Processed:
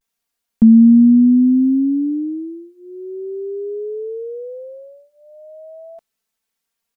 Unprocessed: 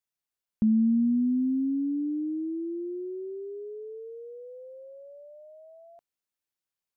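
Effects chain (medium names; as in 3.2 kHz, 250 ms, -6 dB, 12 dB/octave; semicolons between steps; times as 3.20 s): comb 4.4 ms, depth 96%; vibrato 0.45 Hz 49 cents; trim +9 dB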